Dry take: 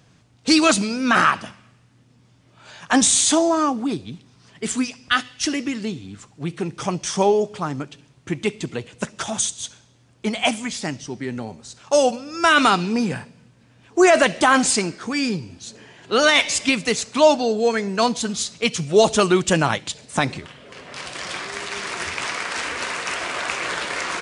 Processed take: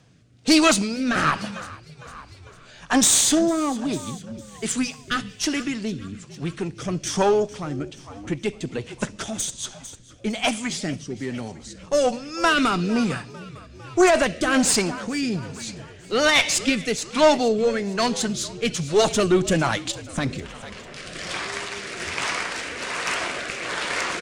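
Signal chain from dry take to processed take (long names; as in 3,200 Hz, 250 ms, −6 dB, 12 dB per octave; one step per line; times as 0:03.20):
one-sided soft clipper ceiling −14 dBFS
echo with shifted repeats 452 ms, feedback 55%, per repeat −54 Hz, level −17.5 dB
rotating-speaker cabinet horn 1.2 Hz
level +2 dB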